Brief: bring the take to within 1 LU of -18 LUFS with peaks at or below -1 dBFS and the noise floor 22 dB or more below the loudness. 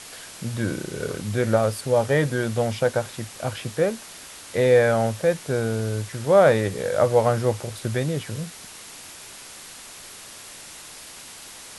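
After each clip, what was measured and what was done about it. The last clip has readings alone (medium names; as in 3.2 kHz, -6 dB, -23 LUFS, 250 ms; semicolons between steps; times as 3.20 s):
noise floor -42 dBFS; noise floor target -45 dBFS; loudness -23.0 LUFS; peak level -4.5 dBFS; loudness target -18.0 LUFS
-> noise print and reduce 6 dB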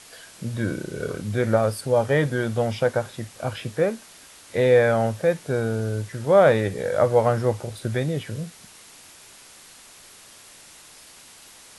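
noise floor -48 dBFS; loudness -23.0 LUFS; peak level -4.5 dBFS; loudness target -18.0 LUFS
-> trim +5 dB; peak limiter -1 dBFS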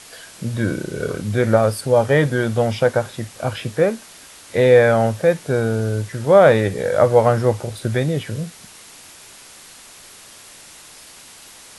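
loudness -18.0 LUFS; peak level -1.0 dBFS; noise floor -43 dBFS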